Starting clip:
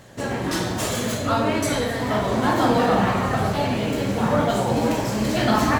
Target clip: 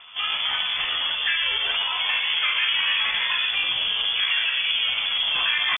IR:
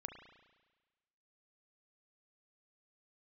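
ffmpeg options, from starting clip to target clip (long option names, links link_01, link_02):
-filter_complex "[0:a]acrossover=split=170|1300[link_01][link_02][link_03];[link_03]acontrast=41[link_04];[link_01][link_02][link_04]amix=inputs=3:normalize=0,asetrate=62367,aresample=44100,atempo=0.707107,asplit=2[link_05][link_06];[1:a]atrim=start_sample=2205,lowpass=2300[link_07];[link_06][link_07]afir=irnorm=-1:irlink=0,volume=-8dB[link_08];[link_05][link_08]amix=inputs=2:normalize=0,lowpass=frequency=3100:width_type=q:width=0.5098,lowpass=frequency=3100:width_type=q:width=0.6013,lowpass=frequency=3100:width_type=q:width=0.9,lowpass=frequency=3100:width_type=q:width=2.563,afreqshift=-3600,equalizer=frequency=350:width=0.81:gain=-8,acompressor=threshold=-21dB:ratio=3"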